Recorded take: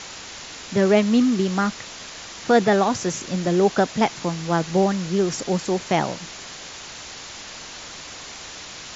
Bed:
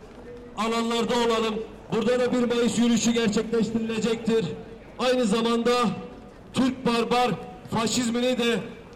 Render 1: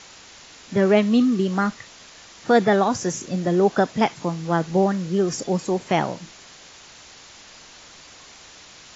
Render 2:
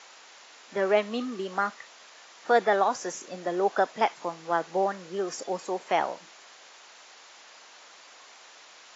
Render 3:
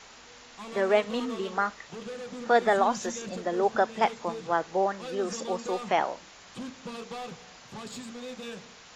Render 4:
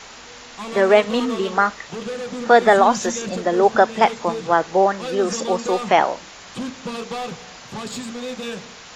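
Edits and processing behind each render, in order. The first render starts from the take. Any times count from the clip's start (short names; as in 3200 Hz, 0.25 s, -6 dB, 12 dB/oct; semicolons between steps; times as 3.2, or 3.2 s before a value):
noise print and reduce 8 dB
HPF 600 Hz 12 dB/oct; high shelf 2200 Hz -8.5 dB
add bed -16.5 dB
gain +10 dB; limiter -2 dBFS, peak gain reduction 2 dB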